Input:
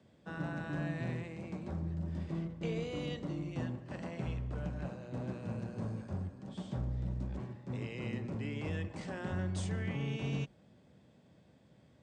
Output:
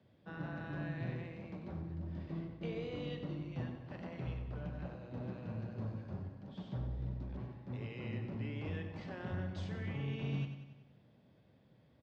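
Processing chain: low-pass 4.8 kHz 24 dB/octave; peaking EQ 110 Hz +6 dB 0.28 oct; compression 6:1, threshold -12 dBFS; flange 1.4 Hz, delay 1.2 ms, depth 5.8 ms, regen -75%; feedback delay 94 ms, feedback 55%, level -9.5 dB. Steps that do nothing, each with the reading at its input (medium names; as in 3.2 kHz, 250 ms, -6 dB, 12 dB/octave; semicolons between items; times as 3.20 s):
compression, threshold -12 dBFS: peak at its input -24.5 dBFS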